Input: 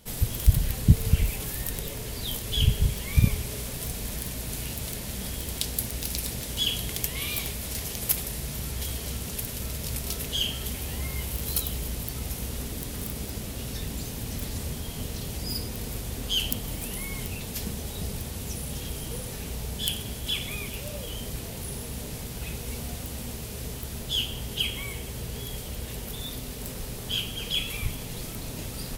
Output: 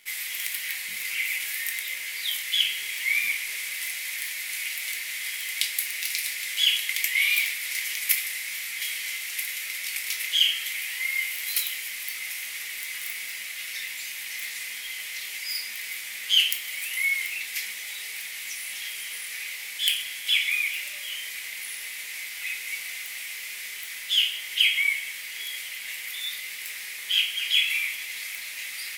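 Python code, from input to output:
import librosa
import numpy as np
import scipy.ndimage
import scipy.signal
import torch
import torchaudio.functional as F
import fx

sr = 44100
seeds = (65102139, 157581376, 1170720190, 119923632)

p1 = fx.highpass_res(x, sr, hz=2100.0, q=7.4)
p2 = fx.quant_dither(p1, sr, seeds[0], bits=8, dither='none')
p3 = p1 + F.gain(torch.from_numpy(p2), -4.0).numpy()
p4 = fx.room_shoebox(p3, sr, seeds[1], volume_m3=270.0, walls='furnished', distance_m=1.3)
y = F.gain(torch.from_numpy(p4), -4.0).numpy()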